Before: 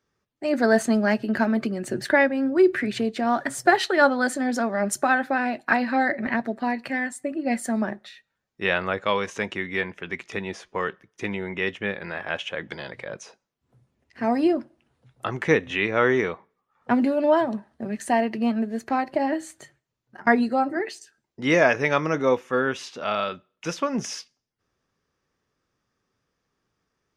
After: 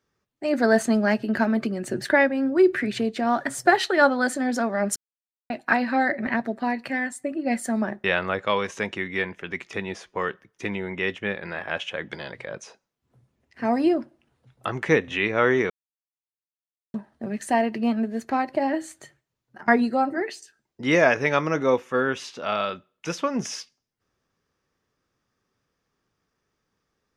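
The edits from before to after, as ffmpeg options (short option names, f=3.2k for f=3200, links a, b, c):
-filter_complex "[0:a]asplit=6[a][b][c][d][e][f];[a]atrim=end=4.96,asetpts=PTS-STARTPTS,afade=t=out:st=4.956:d=0.004:c=hsin[g];[b]atrim=start=4.96:end=5.5,asetpts=PTS-STARTPTS,volume=0[h];[c]atrim=start=5.5:end=8.042,asetpts=PTS-STARTPTS,afade=t=in:d=0.004:c=hsin[i];[d]atrim=start=8.628:end=16.29,asetpts=PTS-STARTPTS,afade=t=out:st=7.658:d=0.004:c=hsin[j];[e]atrim=start=16.29:end=17.53,asetpts=PTS-STARTPTS,volume=0[k];[f]atrim=start=17.53,asetpts=PTS-STARTPTS,afade=t=in:d=0.004:c=hsin[l];[g][h][i]concat=n=3:v=0:a=1[m];[j][k][l]concat=n=3:v=0:a=1[n];[m][n]acrossfade=d=0.004:c1=hsin:c2=hsin"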